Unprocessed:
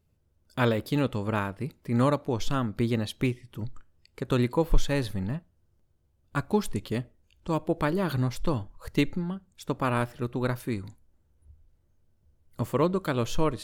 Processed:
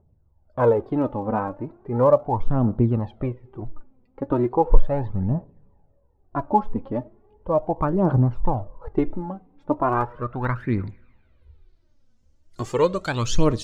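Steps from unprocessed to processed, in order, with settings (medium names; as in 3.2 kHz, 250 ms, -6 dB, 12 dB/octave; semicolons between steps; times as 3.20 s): two-slope reverb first 0.4 s, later 2.6 s, from -16 dB, DRR 20 dB; low-pass sweep 820 Hz -> 6.4 kHz, 9.72–12.21 s; phaser 0.37 Hz, delay 4.1 ms, feedback 63%; trim +1.5 dB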